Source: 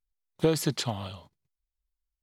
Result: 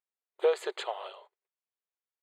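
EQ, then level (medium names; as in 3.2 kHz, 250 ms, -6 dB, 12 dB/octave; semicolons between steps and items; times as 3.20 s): boxcar filter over 8 samples; brick-wall FIR high-pass 360 Hz; +1.0 dB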